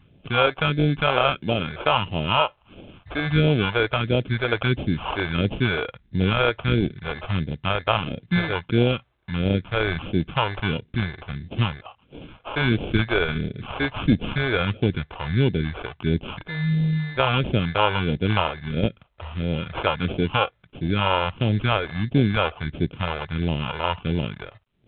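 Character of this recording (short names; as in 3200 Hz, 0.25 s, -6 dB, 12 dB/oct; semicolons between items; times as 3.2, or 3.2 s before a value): aliases and images of a low sample rate 1900 Hz, jitter 0%; phasing stages 2, 1.5 Hz, lowest notch 180–1200 Hz; µ-law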